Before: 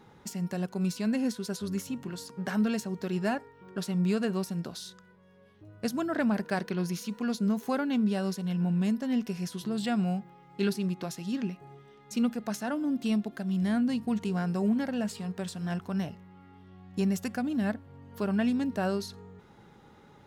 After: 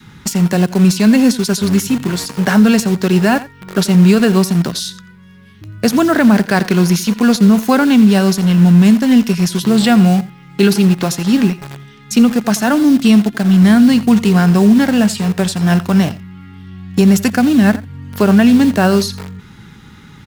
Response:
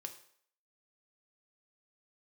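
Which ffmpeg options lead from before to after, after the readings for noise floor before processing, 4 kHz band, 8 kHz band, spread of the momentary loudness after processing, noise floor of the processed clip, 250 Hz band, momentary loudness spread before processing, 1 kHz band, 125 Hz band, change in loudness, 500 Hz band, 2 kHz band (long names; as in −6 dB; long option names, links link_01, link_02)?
−56 dBFS, +20.0 dB, +20.5 dB, 9 LU, −41 dBFS, +19.0 dB, 9 LU, +17.5 dB, +19.5 dB, +19.0 dB, +17.0 dB, +19.0 dB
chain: -filter_complex "[0:a]adynamicequalizer=threshold=0.00562:dfrequency=570:dqfactor=1.3:tfrequency=570:tqfactor=1.3:attack=5:release=100:ratio=0.375:range=2.5:mode=cutabove:tftype=bell,acrossover=split=290|1200[link_01][link_02][link_03];[link_02]acrusher=bits=7:mix=0:aa=0.000001[link_04];[link_01][link_04][link_03]amix=inputs=3:normalize=0,aecho=1:1:86:0.126,alimiter=level_in=21dB:limit=-1dB:release=50:level=0:latency=1,volume=-1dB"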